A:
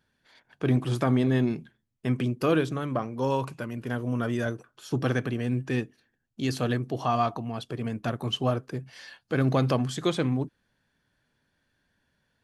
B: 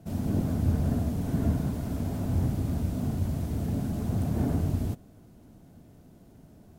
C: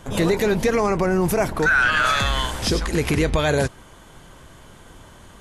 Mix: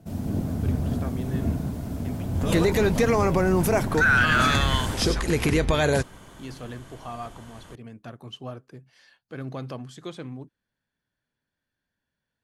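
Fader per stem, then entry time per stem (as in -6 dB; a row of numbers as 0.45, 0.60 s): -11.0, 0.0, -2.0 dB; 0.00, 0.00, 2.35 s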